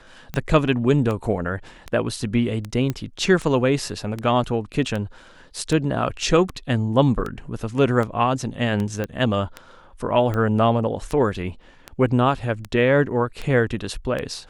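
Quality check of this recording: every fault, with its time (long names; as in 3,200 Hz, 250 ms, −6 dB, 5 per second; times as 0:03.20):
scratch tick 78 rpm −15 dBFS
0:02.90: click −12 dBFS
0:09.04: click −14 dBFS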